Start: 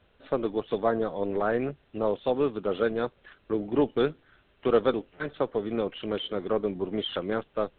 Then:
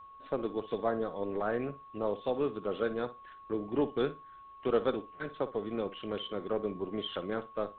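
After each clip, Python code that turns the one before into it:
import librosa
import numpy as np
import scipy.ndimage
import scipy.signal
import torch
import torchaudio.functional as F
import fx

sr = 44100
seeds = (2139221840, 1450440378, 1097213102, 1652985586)

y = x + 10.0 ** (-42.0 / 20.0) * np.sin(2.0 * np.pi * 1100.0 * np.arange(len(x)) / sr)
y = fx.room_flutter(y, sr, wall_m=9.9, rt60_s=0.23)
y = F.gain(torch.from_numpy(y), -6.0).numpy()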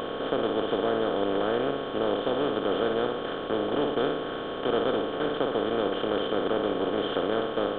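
y = fx.bin_compress(x, sr, power=0.2)
y = F.gain(torch.from_numpy(y), -2.5).numpy()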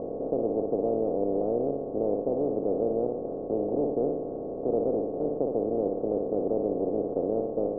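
y = scipy.signal.sosfilt(scipy.signal.butter(6, 710.0, 'lowpass', fs=sr, output='sos'), x)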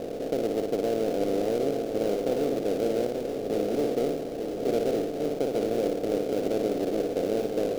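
y = fx.dead_time(x, sr, dead_ms=0.13)
y = y + 10.0 ** (-6.5 / 20.0) * np.pad(y, (int(884 * sr / 1000.0), 0))[:len(y)]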